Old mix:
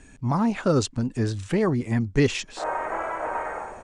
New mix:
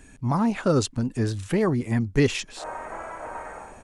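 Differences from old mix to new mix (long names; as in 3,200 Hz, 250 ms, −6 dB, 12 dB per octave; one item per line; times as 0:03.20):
background −7.0 dB
master: remove low-pass filter 8,900 Hz 24 dB per octave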